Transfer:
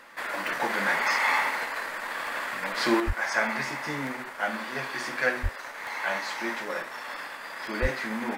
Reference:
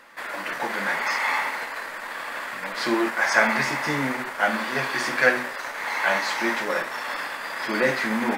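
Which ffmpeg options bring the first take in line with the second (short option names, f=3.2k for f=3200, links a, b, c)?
-filter_complex "[0:a]adeclick=t=4,asplit=3[a][b][c];[a]afade=t=out:st=3.06:d=0.02[d];[b]highpass=f=140:w=0.5412,highpass=f=140:w=1.3066,afade=t=in:st=3.06:d=0.02,afade=t=out:st=3.18:d=0.02[e];[c]afade=t=in:st=3.18:d=0.02[f];[d][e][f]amix=inputs=3:normalize=0,asplit=3[g][h][i];[g]afade=t=out:st=5.42:d=0.02[j];[h]highpass=f=140:w=0.5412,highpass=f=140:w=1.3066,afade=t=in:st=5.42:d=0.02,afade=t=out:st=5.54:d=0.02[k];[i]afade=t=in:st=5.54:d=0.02[l];[j][k][l]amix=inputs=3:normalize=0,asplit=3[m][n][o];[m]afade=t=out:st=7.81:d=0.02[p];[n]highpass=f=140:w=0.5412,highpass=f=140:w=1.3066,afade=t=in:st=7.81:d=0.02,afade=t=out:st=7.93:d=0.02[q];[o]afade=t=in:st=7.93:d=0.02[r];[p][q][r]amix=inputs=3:normalize=0,asetnsamples=n=441:p=0,asendcmd='3 volume volume 7dB',volume=0dB"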